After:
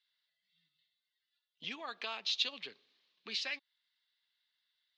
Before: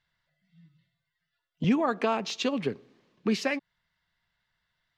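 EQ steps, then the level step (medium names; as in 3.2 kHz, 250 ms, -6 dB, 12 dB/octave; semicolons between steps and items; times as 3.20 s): band-pass filter 3.9 kHz, Q 2.9; distance through air 52 m; +5.5 dB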